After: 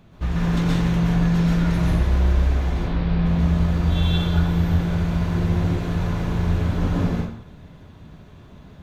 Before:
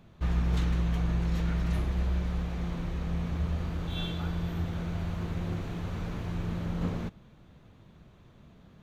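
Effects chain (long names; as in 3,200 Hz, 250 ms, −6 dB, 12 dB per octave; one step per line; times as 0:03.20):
0:02.72–0:03.26: Butterworth low-pass 5,000 Hz 48 dB per octave
dense smooth reverb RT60 0.67 s, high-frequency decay 0.8×, pre-delay 110 ms, DRR −4.5 dB
level +4.5 dB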